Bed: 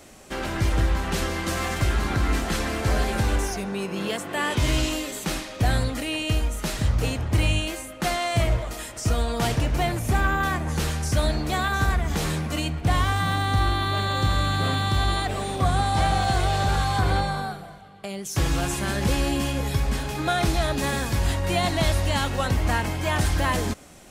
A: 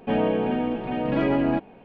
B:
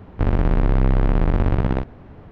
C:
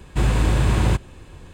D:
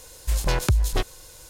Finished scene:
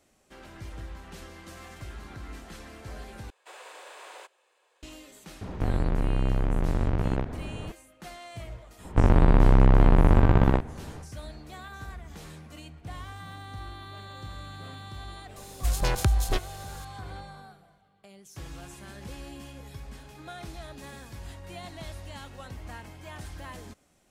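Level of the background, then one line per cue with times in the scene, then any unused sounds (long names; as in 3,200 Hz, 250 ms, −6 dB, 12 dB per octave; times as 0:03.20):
bed −18.5 dB
0:03.30: overwrite with C −16.5 dB + Butterworth high-pass 480 Hz
0:05.41: mix in B −9 dB + envelope flattener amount 50%
0:08.77: mix in B, fades 0.10 s + parametric band 960 Hz +3.5 dB 0.54 octaves
0:15.36: mix in D −3 dB
not used: A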